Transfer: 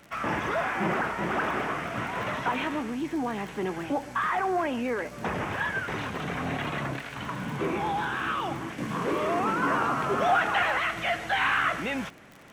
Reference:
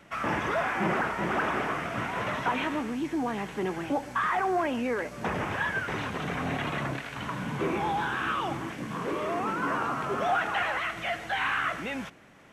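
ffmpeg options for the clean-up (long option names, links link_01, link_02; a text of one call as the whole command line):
ffmpeg -i in.wav -af "adeclick=threshold=4,asetnsamples=nb_out_samples=441:pad=0,asendcmd='8.78 volume volume -3.5dB',volume=0dB" out.wav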